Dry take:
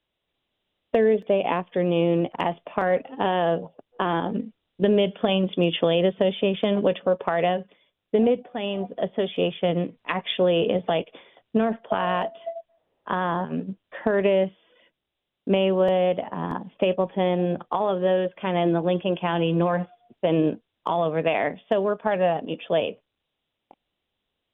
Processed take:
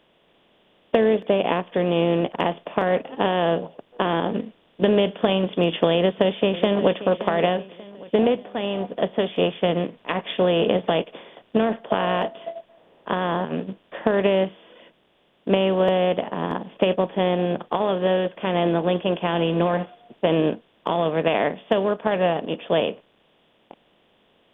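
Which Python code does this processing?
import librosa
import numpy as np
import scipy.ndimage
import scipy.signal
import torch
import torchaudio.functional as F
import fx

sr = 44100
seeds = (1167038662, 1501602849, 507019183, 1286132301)

y = fx.echo_throw(x, sr, start_s=5.95, length_s=0.99, ms=580, feedback_pct=35, wet_db=-16.0)
y = fx.bin_compress(y, sr, power=0.6)
y = fx.upward_expand(y, sr, threshold_db=-30.0, expansion=1.5)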